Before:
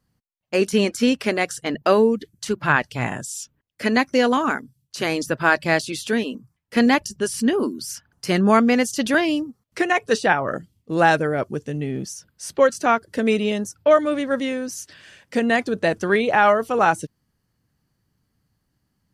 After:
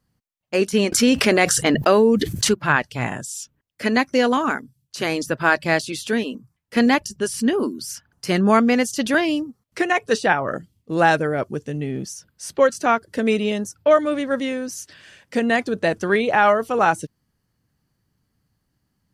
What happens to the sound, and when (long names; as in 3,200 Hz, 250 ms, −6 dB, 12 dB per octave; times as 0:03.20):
0:00.92–0:02.54: envelope flattener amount 70%